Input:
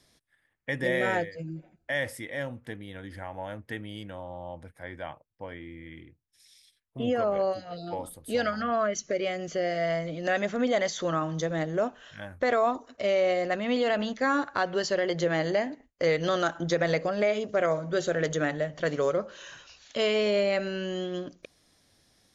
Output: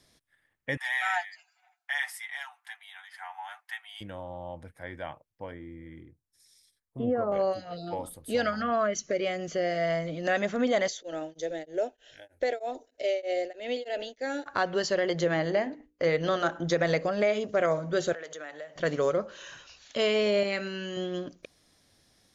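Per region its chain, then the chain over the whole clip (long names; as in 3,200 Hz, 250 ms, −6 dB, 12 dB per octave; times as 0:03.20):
0:00.77–0:04.01: Butterworth high-pass 730 Hz 96 dB per octave + comb filter 6.8 ms, depth 66%
0:05.51–0:07.32: notch filter 640 Hz, Q 17 + treble cut that deepens with the level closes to 1,900 Hz, closed at −25.5 dBFS + parametric band 2,800 Hz −13 dB 1.1 octaves
0:10.88–0:14.46: parametric band 100 Hz −14 dB 0.86 octaves + phaser with its sweep stopped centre 470 Hz, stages 4 + tremolo along a rectified sine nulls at 3.2 Hz
0:15.34–0:16.64: low-pass filter 3,600 Hz 6 dB per octave + mains-hum notches 60/120/180/240/300/360/420/480/540 Hz
0:18.13–0:18.76: high-pass filter 520 Hz + downward compressor 3 to 1, threshold −40 dBFS
0:20.43–0:20.97: high-pass filter 220 Hz 6 dB per octave + parametric band 650 Hz −12.5 dB 0.39 octaves + double-tracking delay 20 ms −11 dB
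whole clip: no processing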